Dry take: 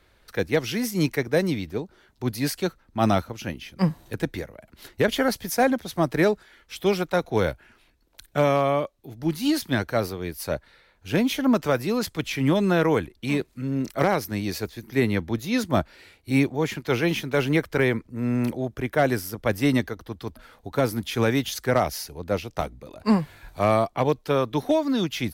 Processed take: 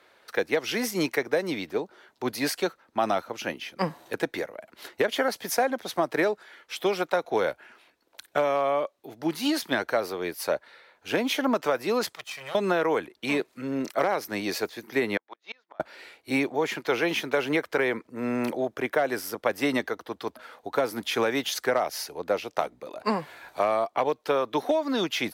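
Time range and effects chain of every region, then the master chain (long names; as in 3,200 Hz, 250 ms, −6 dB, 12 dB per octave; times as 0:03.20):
0:12.15–0:12.55: lower of the sound and its delayed copy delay 1.6 ms + guitar amp tone stack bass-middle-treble 5-5-5
0:15.17–0:15.80: high-pass filter 790 Hz + high-frequency loss of the air 180 metres + gate with flip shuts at −28 dBFS, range −34 dB
whole clip: high-pass filter 540 Hz 12 dB per octave; spectral tilt −2 dB per octave; downward compressor 6 to 1, threshold −27 dBFS; level +6 dB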